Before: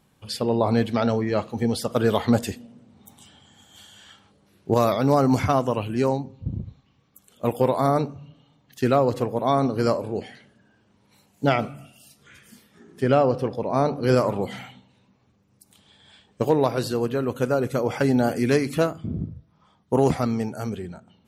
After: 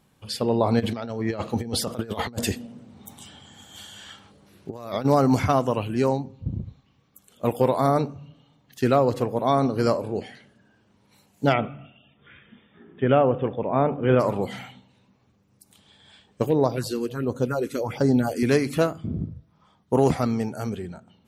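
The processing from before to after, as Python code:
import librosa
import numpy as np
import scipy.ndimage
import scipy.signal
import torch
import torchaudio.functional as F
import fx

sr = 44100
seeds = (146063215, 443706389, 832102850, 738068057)

y = fx.over_compress(x, sr, threshold_db=-27.0, ratio=-0.5, at=(0.79, 5.04), fade=0.02)
y = fx.brickwall_lowpass(y, sr, high_hz=3700.0, at=(11.52, 14.19), fade=0.02)
y = fx.phaser_stages(y, sr, stages=4, low_hz=110.0, high_hz=2800.0, hz=1.4, feedback_pct=25, at=(16.46, 18.43))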